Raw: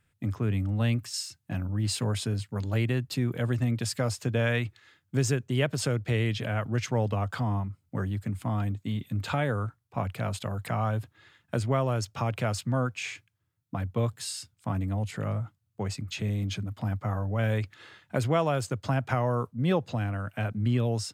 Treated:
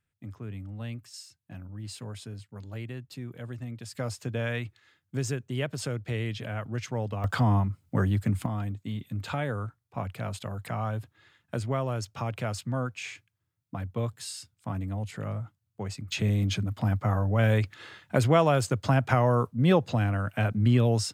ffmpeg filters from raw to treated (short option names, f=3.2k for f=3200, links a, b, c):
-af "asetnsamples=n=441:p=0,asendcmd='3.95 volume volume -4.5dB;7.24 volume volume 5.5dB;8.46 volume volume -3dB;16.12 volume volume 4dB',volume=-11dB"